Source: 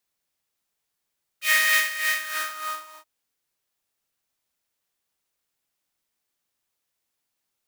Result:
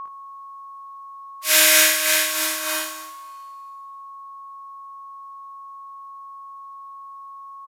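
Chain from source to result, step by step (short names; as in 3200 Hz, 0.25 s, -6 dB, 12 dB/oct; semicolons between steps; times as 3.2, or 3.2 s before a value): spectral limiter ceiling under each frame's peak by 25 dB; two-slope reverb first 0.48 s, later 1.8 s, from -18 dB, DRR -9.5 dB; whine 1100 Hz -26 dBFS; on a send: early reflections 56 ms -5 dB, 76 ms -9 dB; on the sum: downsampling 32000 Hz; gain -4.5 dB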